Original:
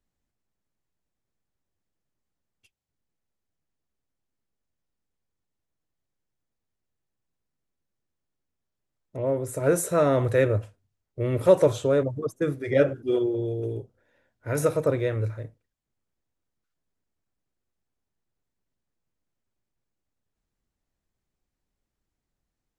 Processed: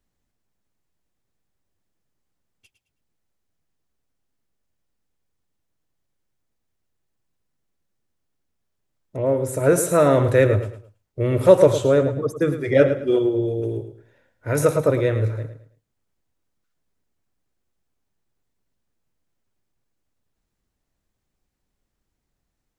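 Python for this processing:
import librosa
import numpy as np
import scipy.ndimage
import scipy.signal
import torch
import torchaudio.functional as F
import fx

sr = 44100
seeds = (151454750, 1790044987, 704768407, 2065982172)

y = fx.echo_feedback(x, sr, ms=108, feedback_pct=29, wet_db=-11)
y = y * 10.0 ** (5.0 / 20.0)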